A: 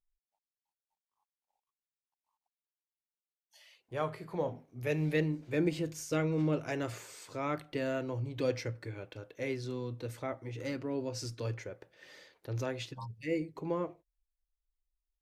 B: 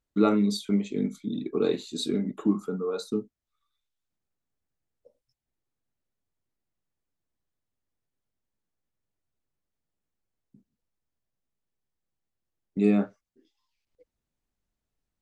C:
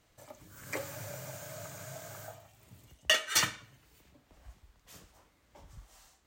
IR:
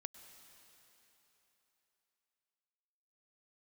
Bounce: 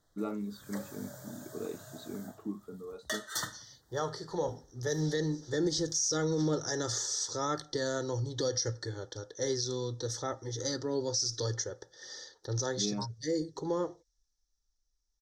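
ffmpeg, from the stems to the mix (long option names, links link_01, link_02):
-filter_complex "[0:a]lowpass=frequency=5800:width_type=q:width=7.1,aecho=1:1:2.3:0.45,adynamicequalizer=threshold=0.00282:dfrequency=2400:dqfactor=0.7:tfrequency=2400:tqfactor=0.7:attack=5:release=100:ratio=0.375:range=3.5:mode=boostabove:tftype=highshelf,volume=2dB[link_01];[1:a]lowpass=frequency=2200:poles=1,volume=-14dB[link_02];[2:a]volume=-5dB[link_03];[link_01][link_03]amix=inputs=2:normalize=0,asuperstop=centerf=2500:order=8:qfactor=1.8,alimiter=limit=-22dB:level=0:latency=1:release=72,volume=0dB[link_04];[link_02][link_04]amix=inputs=2:normalize=0"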